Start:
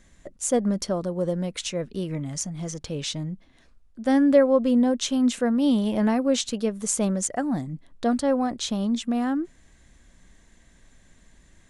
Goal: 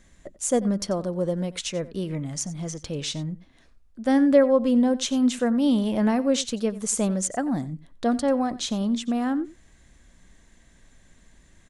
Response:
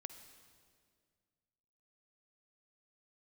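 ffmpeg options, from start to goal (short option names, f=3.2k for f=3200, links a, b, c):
-af "aecho=1:1:90:0.126"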